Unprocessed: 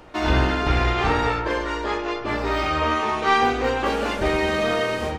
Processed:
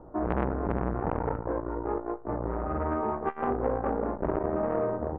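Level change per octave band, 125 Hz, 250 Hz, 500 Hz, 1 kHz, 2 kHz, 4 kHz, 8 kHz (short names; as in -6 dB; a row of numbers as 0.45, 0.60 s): -7.5 dB, -5.0 dB, -5.5 dB, -10.0 dB, -19.5 dB, under -35 dB, under -40 dB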